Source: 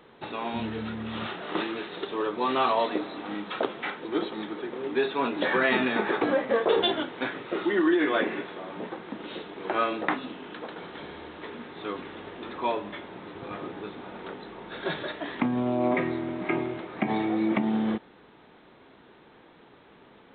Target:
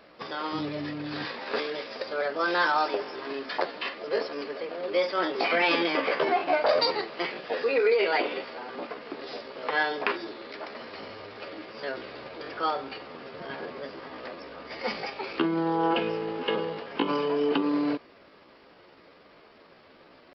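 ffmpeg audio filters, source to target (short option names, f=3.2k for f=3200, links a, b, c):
-af "asetrate=58866,aresample=44100,atempo=0.749154"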